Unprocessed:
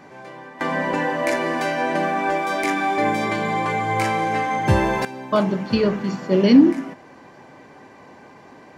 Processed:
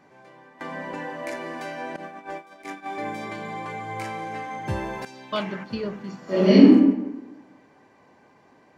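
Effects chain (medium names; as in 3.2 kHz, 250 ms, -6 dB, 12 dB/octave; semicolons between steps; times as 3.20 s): 1.96–2.86 s: gate -20 dBFS, range -16 dB; 5.05–5.63 s: peaking EQ 6.6 kHz -> 1.5 kHz +14.5 dB 1.7 oct; 6.24–6.64 s: reverb throw, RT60 1.1 s, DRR -12 dB; trim -11 dB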